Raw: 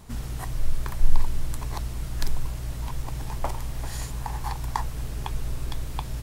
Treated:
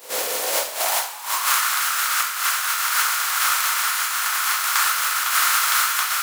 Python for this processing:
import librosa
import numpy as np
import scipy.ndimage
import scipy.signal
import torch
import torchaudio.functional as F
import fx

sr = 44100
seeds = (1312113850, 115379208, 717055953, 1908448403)

y = fx.spec_flatten(x, sr, power=0.19)
y = fx.over_compress(y, sr, threshold_db=-24.0, ratio=-0.5)
y = fx.rev_double_slope(y, sr, seeds[0], early_s=0.39, late_s=2.7, knee_db=-18, drr_db=-3.5)
y = fx.filter_sweep_highpass(y, sr, from_hz=490.0, to_hz=1300.0, start_s=0.4, end_s=1.64, q=4.8)
y = y * 10.0 ** (-3.5 / 20.0)